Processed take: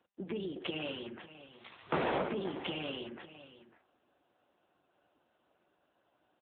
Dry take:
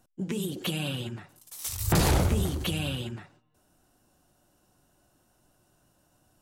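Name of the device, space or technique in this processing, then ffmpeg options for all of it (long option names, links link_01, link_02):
satellite phone: -af "highpass=frequency=130:width=0.5412,highpass=frequency=130:width=1.3066,highpass=330,lowpass=3000,aecho=1:1:550:0.178" -ar 8000 -c:a libopencore_amrnb -b:a 6700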